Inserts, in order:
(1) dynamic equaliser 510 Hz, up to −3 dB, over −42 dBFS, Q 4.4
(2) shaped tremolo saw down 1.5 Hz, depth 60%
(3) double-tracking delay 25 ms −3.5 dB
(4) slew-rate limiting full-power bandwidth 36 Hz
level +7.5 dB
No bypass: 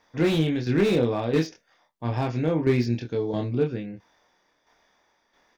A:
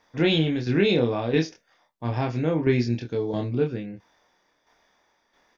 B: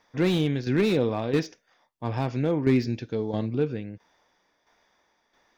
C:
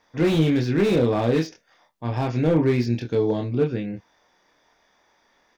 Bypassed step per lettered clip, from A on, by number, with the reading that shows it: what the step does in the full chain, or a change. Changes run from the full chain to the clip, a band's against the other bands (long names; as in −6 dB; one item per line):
4, distortion level −14 dB
3, change in momentary loudness spread +1 LU
2, change in integrated loudness +3.0 LU